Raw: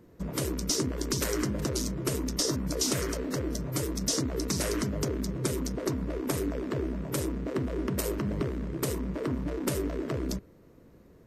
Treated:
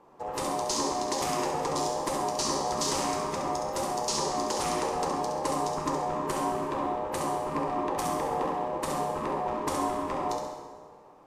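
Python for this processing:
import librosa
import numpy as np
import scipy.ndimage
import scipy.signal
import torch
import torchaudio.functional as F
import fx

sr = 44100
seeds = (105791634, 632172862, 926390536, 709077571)

p1 = scipy.signal.sosfilt(scipy.signal.butter(2, 9700.0, 'lowpass', fs=sr, output='sos'), x)
p2 = p1 * np.sin(2.0 * np.pi * 670.0 * np.arange(len(p1)) / sr)
p3 = p2 + fx.room_flutter(p2, sr, wall_m=11.5, rt60_s=0.6, dry=0)
y = fx.rev_plate(p3, sr, seeds[0], rt60_s=1.6, hf_ratio=0.75, predelay_ms=0, drr_db=2.0)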